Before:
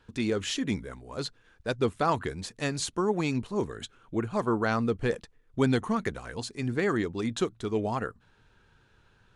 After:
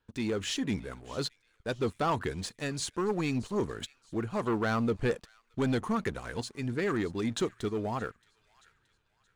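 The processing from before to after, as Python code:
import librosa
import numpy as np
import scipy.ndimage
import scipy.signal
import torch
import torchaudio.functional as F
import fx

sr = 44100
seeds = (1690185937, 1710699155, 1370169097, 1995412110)

y = fx.leveller(x, sr, passes=2)
y = fx.echo_wet_highpass(y, sr, ms=624, feedback_pct=41, hz=2000.0, wet_db=-20.0)
y = fx.tremolo_shape(y, sr, shape='saw_up', hz=0.78, depth_pct=40)
y = y * librosa.db_to_amplitude(-6.5)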